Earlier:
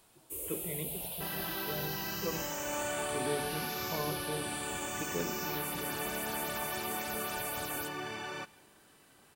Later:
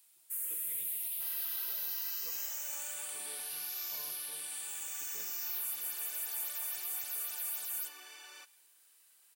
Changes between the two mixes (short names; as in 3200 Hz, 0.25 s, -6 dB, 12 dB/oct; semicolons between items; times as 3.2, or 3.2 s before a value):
first sound: remove Butterworth band-stop 1600 Hz, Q 0.92; second sound: add brick-wall FIR high-pass 270 Hz; master: add pre-emphasis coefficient 0.97